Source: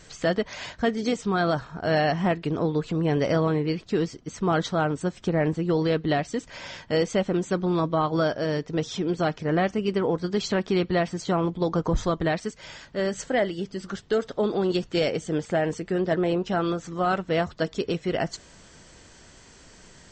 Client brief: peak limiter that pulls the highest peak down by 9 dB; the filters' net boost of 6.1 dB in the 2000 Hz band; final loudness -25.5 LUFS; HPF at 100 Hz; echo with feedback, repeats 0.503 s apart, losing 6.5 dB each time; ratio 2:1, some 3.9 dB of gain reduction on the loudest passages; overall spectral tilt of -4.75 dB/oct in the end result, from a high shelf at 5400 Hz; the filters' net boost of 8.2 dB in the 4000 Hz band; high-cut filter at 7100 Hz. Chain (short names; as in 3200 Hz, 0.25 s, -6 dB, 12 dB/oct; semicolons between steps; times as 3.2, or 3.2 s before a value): HPF 100 Hz; LPF 7100 Hz; bell 2000 Hz +5.5 dB; bell 4000 Hz +7.5 dB; high shelf 5400 Hz +4 dB; compressor 2:1, threshold -24 dBFS; limiter -19 dBFS; feedback echo 0.503 s, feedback 47%, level -6.5 dB; gain +4 dB